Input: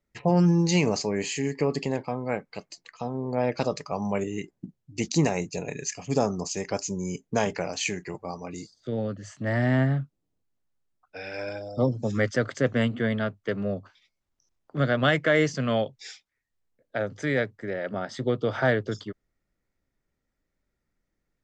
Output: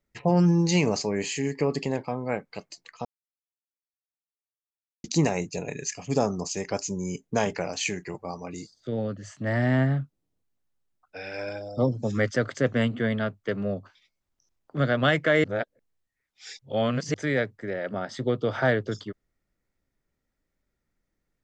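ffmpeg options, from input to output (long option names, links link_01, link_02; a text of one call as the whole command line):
ffmpeg -i in.wav -filter_complex "[0:a]asplit=5[link_01][link_02][link_03][link_04][link_05];[link_01]atrim=end=3.05,asetpts=PTS-STARTPTS,afade=type=out:start_time=3.046:duration=0.004:curve=hsin[link_06];[link_02]atrim=start=3.05:end=5.04,asetpts=PTS-STARTPTS,volume=0[link_07];[link_03]atrim=start=5.04:end=15.442,asetpts=PTS-STARTPTS,afade=type=in:duration=0.004:curve=hsin[link_08];[link_04]atrim=start=15.438:end=17.142,asetpts=PTS-STARTPTS,areverse[link_09];[link_05]atrim=start=17.138[link_10];[link_06][link_07][link_08]concat=n=3:v=0:a=1[link_11];[link_11][link_09]acrossfade=duration=0.004:curve1=hsin:curve2=hsin[link_12];[link_12][link_10]acrossfade=duration=0.004:curve1=hsin:curve2=hsin" out.wav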